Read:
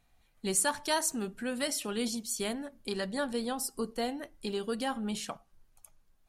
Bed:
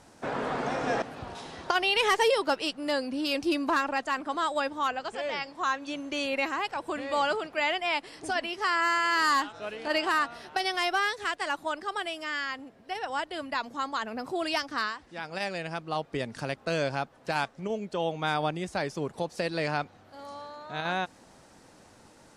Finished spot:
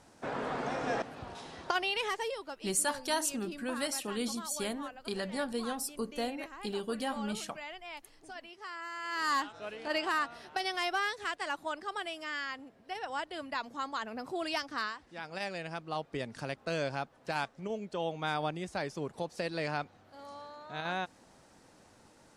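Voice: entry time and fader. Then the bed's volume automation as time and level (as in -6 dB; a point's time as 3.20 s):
2.20 s, -2.0 dB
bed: 1.73 s -4.5 dB
2.51 s -16.5 dB
8.91 s -16.5 dB
9.34 s -5 dB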